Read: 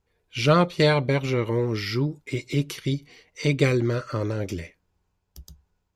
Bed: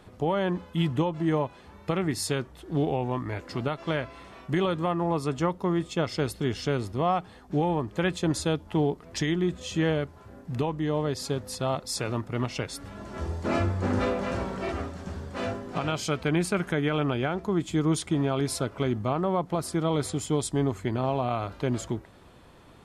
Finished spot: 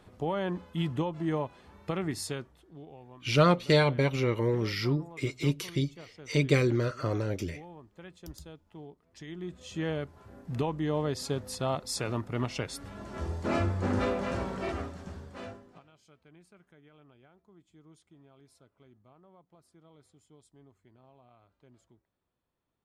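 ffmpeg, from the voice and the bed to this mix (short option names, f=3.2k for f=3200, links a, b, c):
-filter_complex "[0:a]adelay=2900,volume=-3.5dB[a];[1:a]volume=14.5dB,afade=t=out:st=2.15:d=0.6:silence=0.141254,afade=t=in:st=9.14:d=1.37:silence=0.105925,afade=t=out:st=14.69:d=1.15:silence=0.0316228[b];[a][b]amix=inputs=2:normalize=0"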